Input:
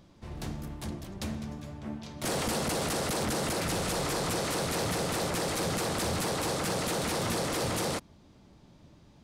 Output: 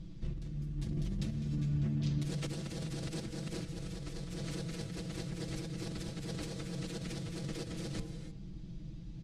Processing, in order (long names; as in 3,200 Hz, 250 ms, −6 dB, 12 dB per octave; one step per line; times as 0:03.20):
guitar amp tone stack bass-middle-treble 10-0-1
comb filter 6.1 ms, depth 99%
hum removal 113.8 Hz, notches 9
compressor whose output falls as the input rises −54 dBFS, ratio −1
high-frequency loss of the air 64 metres
reverb whose tail is shaped and stops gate 330 ms rising, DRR 9.5 dB
level +14.5 dB